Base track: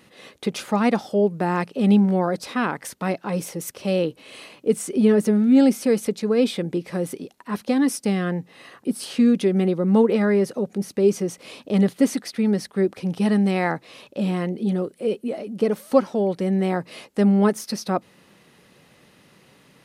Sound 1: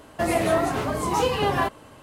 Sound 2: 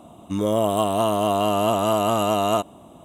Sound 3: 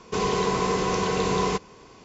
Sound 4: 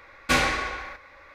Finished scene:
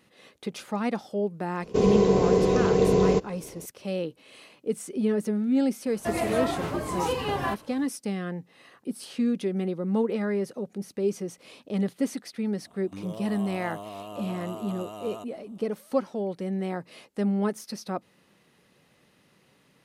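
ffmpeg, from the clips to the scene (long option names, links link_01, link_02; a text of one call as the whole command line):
ffmpeg -i bed.wav -i cue0.wav -i cue1.wav -i cue2.wav -filter_complex "[0:a]volume=-8.5dB[link_01];[3:a]lowshelf=frequency=770:width_type=q:width=1.5:gain=10[link_02];[2:a]alimiter=limit=-16.5dB:level=0:latency=1:release=71[link_03];[link_02]atrim=end=2.04,asetpts=PTS-STARTPTS,volume=-6.5dB,afade=type=in:duration=0.004:curve=hsin,afade=type=out:start_time=2.036:duration=0.004:curve=hsin,adelay=1620[link_04];[1:a]atrim=end=2.02,asetpts=PTS-STARTPTS,volume=-5.5dB,afade=type=in:duration=0.004:curve=hsin,afade=type=out:start_time=2.016:duration=0.004:curve=hsin,adelay=5860[link_05];[link_03]atrim=end=3.04,asetpts=PTS-STARTPTS,volume=-14dB,afade=type=in:duration=0.004:curve=hsin,afade=type=out:start_time=3.036:duration=0.004:curve=hsin,adelay=12620[link_06];[link_01][link_04][link_05][link_06]amix=inputs=4:normalize=0" out.wav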